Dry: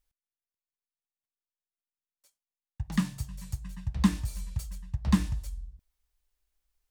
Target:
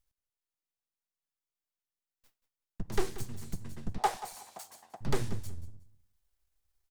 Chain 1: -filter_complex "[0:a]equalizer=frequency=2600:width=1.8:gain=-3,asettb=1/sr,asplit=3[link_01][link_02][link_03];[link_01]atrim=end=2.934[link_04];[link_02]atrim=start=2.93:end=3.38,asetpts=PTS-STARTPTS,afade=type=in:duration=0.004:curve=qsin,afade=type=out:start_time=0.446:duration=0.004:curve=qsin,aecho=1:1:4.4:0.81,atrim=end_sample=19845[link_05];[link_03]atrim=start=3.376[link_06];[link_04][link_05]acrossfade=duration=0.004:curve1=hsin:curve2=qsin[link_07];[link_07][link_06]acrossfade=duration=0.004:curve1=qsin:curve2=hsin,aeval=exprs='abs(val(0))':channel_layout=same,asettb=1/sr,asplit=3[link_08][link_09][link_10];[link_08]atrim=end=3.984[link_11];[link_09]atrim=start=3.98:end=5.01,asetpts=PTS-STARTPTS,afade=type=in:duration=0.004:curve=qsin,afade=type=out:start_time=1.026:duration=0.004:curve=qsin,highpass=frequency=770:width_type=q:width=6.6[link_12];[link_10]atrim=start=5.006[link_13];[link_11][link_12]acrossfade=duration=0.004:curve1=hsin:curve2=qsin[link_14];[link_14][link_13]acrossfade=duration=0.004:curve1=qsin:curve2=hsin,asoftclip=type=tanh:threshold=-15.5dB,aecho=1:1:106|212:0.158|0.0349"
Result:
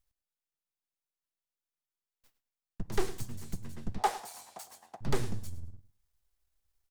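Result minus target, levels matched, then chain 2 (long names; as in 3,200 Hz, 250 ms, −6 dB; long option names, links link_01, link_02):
echo 76 ms early
-filter_complex "[0:a]equalizer=frequency=2600:width=1.8:gain=-3,asettb=1/sr,asplit=3[link_01][link_02][link_03];[link_01]atrim=end=2.934[link_04];[link_02]atrim=start=2.93:end=3.38,asetpts=PTS-STARTPTS,afade=type=in:duration=0.004:curve=qsin,afade=type=out:start_time=0.446:duration=0.004:curve=qsin,aecho=1:1:4.4:0.81,atrim=end_sample=19845[link_05];[link_03]atrim=start=3.376[link_06];[link_04][link_05]acrossfade=duration=0.004:curve1=hsin:curve2=qsin[link_07];[link_07][link_06]acrossfade=duration=0.004:curve1=qsin:curve2=hsin,aeval=exprs='abs(val(0))':channel_layout=same,asettb=1/sr,asplit=3[link_08][link_09][link_10];[link_08]atrim=end=3.984[link_11];[link_09]atrim=start=3.98:end=5.01,asetpts=PTS-STARTPTS,afade=type=in:duration=0.004:curve=qsin,afade=type=out:start_time=1.026:duration=0.004:curve=qsin,highpass=frequency=770:width_type=q:width=6.6[link_12];[link_10]atrim=start=5.006[link_13];[link_11][link_12]acrossfade=duration=0.004:curve1=hsin:curve2=qsin[link_14];[link_14][link_13]acrossfade=duration=0.004:curve1=qsin:curve2=hsin,asoftclip=type=tanh:threshold=-15.5dB,aecho=1:1:182|364:0.158|0.0349"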